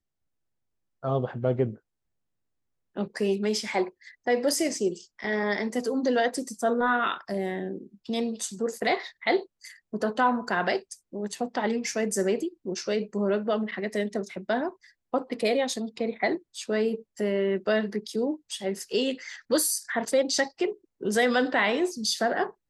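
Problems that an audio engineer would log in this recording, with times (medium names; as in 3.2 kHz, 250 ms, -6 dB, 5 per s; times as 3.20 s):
5.24 s: dropout 2.4 ms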